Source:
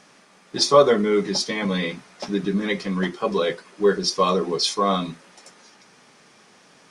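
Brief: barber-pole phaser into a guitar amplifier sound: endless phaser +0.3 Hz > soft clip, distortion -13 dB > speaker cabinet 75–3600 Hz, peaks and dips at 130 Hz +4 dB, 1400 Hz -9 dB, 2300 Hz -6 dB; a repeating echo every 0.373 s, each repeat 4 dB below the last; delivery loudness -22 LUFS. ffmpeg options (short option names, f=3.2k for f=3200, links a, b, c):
-filter_complex "[0:a]aecho=1:1:373|746|1119|1492|1865|2238|2611|2984|3357:0.631|0.398|0.25|0.158|0.0994|0.0626|0.0394|0.0249|0.0157,asplit=2[a][b];[b]afreqshift=0.3[c];[a][c]amix=inputs=2:normalize=1,asoftclip=threshold=-14.5dB,highpass=75,equalizer=f=130:t=q:w=4:g=4,equalizer=f=1.4k:t=q:w=4:g=-9,equalizer=f=2.3k:t=q:w=4:g=-6,lowpass=f=3.6k:w=0.5412,lowpass=f=3.6k:w=1.3066,volume=4dB"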